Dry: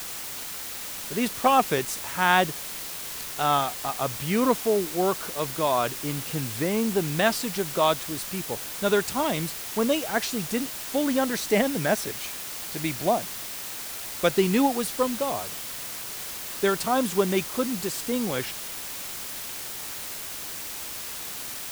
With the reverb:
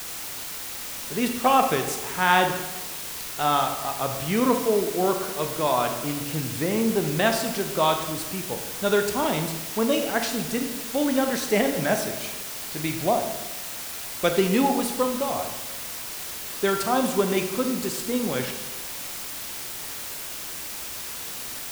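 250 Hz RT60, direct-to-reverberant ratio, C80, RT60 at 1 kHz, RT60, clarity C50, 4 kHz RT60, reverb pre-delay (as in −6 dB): 1.3 s, 5.0 dB, 9.0 dB, 1.1 s, 1.1 s, 7.0 dB, 0.85 s, 20 ms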